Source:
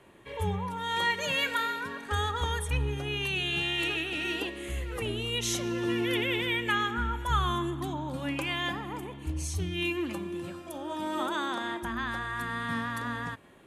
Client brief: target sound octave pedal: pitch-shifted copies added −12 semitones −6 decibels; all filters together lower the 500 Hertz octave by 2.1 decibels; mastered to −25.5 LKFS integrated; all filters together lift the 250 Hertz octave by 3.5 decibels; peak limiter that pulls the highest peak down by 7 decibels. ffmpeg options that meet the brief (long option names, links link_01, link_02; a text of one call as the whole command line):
ffmpeg -i in.wav -filter_complex "[0:a]equalizer=frequency=250:width_type=o:gain=8.5,equalizer=frequency=500:width_type=o:gain=-9,alimiter=limit=-23dB:level=0:latency=1,asplit=2[link_01][link_02];[link_02]asetrate=22050,aresample=44100,atempo=2,volume=-6dB[link_03];[link_01][link_03]amix=inputs=2:normalize=0,volume=6dB" out.wav